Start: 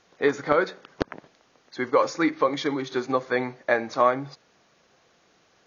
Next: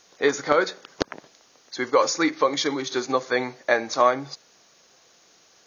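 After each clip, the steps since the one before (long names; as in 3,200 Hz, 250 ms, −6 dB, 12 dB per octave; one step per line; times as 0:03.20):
bass and treble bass −5 dB, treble +13 dB
level +1.5 dB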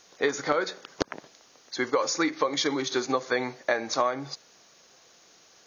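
downward compressor 6 to 1, threshold −21 dBFS, peak gain reduction 8.5 dB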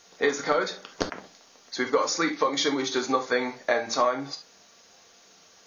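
convolution reverb, pre-delay 4 ms, DRR 3.5 dB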